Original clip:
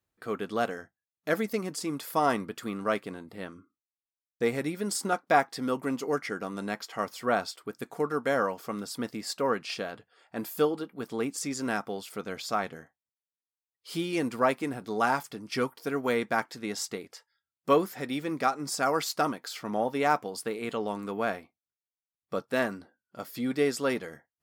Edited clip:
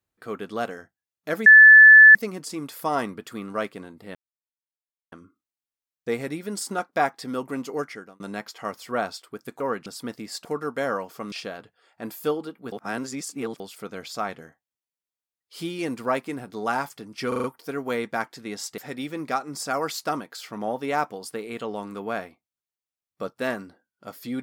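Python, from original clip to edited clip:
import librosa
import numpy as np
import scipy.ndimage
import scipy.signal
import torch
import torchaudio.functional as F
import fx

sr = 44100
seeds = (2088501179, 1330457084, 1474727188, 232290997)

y = fx.edit(x, sr, fx.insert_tone(at_s=1.46, length_s=0.69, hz=1740.0, db=-6.0),
    fx.insert_silence(at_s=3.46, length_s=0.97),
    fx.fade_out_span(start_s=6.14, length_s=0.4),
    fx.swap(start_s=7.94, length_s=0.87, other_s=9.4, other_length_s=0.26),
    fx.reverse_span(start_s=11.06, length_s=0.88),
    fx.stutter(start_s=15.62, slice_s=0.04, count=5),
    fx.cut(start_s=16.96, length_s=0.94), tone=tone)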